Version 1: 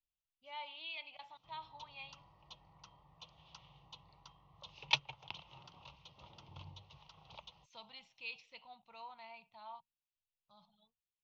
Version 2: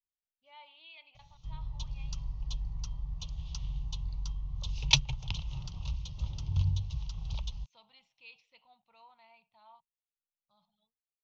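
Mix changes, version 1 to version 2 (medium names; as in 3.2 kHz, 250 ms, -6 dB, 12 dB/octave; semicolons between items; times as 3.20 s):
speech -7.5 dB; background: remove band-pass 420–2300 Hz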